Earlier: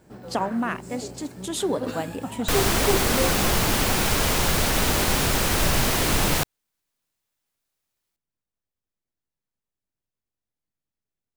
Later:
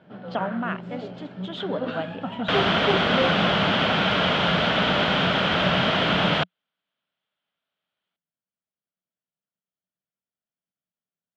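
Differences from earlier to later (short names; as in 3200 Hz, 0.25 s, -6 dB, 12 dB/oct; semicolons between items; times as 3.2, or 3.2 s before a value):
speech -5.0 dB; master: add speaker cabinet 140–3500 Hz, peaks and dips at 180 Hz +9 dB, 350 Hz -4 dB, 630 Hz +7 dB, 1400 Hz +7 dB, 3200 Hz +10 dB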